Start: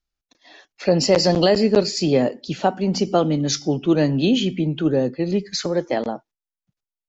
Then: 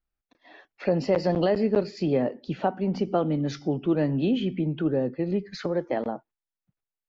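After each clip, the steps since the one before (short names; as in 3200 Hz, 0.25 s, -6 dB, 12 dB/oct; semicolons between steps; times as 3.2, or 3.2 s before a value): LPF 2200 Hz 12 dB/oct; in parallel at +3 dB: compressor, threshold -26 dBFS, peak gain reduction 14.5 dB; on the sum: gain -9 dB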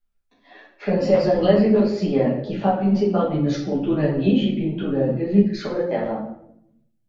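shoebox room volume 160 m³, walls mixed, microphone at 1.3 m; ensemble effect; gain +3 dB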